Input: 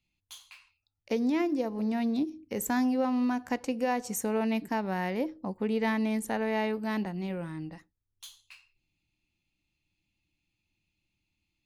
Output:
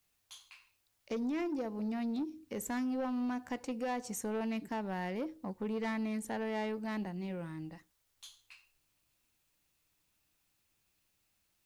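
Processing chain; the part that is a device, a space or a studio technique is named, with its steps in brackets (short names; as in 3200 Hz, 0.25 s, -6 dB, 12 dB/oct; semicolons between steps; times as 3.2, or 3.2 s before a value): compact cassette (soft clip -25.5 dBFS, distortion -15 dB; LPF 11000 Hz; wow and flutter 12 cents; white noise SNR 39 dB); gain -4.5 dB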